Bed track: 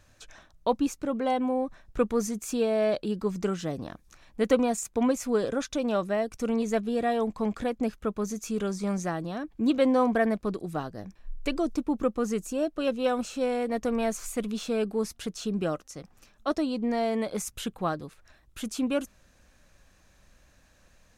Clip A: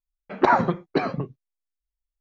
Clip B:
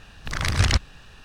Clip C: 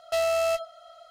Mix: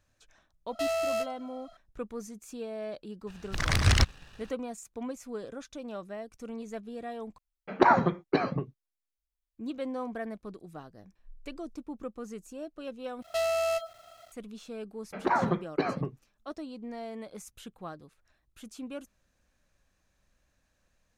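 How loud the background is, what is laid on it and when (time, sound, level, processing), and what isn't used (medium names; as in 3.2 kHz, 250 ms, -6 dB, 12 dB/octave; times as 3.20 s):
bed track -12.5 dB
0.67 s: add C -5 dB
3.27 s: add B -5.5 dB + waveshaping leveller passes 1
7.38 s: replace with A -3 dB
13.22 s: replace with C -3.5 dB + small samples zeroed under -50.5 dBFS
14.83 s: add A -4 dB + peak limiter -12 dBFS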